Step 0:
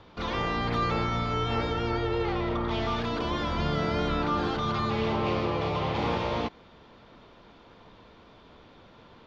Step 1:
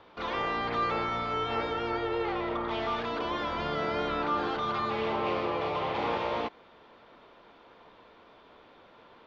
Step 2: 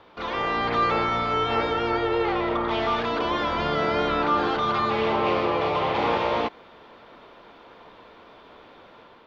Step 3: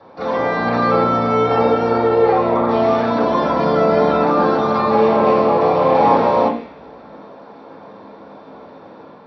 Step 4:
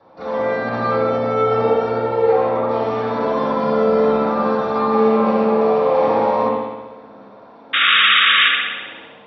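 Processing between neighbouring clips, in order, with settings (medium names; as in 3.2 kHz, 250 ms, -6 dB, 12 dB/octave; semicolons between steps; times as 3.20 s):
tone controls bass -13 dB, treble -9 dB
level rider gain up to 4 dB; trim +3 dB
reverberation RT60 0.50 s, pre-delay 3 ms, DRR -7 dB; trim -6.5 dB
painted sound noise, 7.73–8.49 s, 1.1–3.8 kHz -9 dBFS; spring tank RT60 1.2 s, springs 59 ms, chirp 30 ms, DRR -0.5 dB; trim -7 dB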